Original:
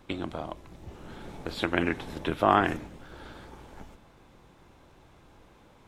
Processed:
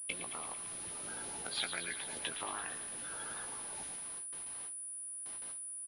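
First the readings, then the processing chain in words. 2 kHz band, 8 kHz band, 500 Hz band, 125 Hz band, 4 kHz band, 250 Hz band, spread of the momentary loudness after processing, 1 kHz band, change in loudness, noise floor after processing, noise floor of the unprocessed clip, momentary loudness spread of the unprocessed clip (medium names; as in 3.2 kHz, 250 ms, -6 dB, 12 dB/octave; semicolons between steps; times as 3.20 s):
-8.5 dB, no reading, -18.0 dB, -20.0 dB, -1.0 dB, -21.0 dB, 5 LU, -16.5 dB, -11.0 dB, -45 dBFS, -57 dBFS, 24 LU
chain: coarse spectral quantiser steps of 30 dB; compression 5:1, threshold -38 dBFS, peak gain reduction 19.5 dB; bit crusher 11-bit; differentiator; doubling 17 ms -7 dB; thinning echo 112 ms, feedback 74%, high-pass 920 Hz, level -10 dB; gate with hold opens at -54 dBFS; bass shelf 280 Hz +10.5 dB; class-D stage that switches slowly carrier 9.8 kHz; trim +13.5 dB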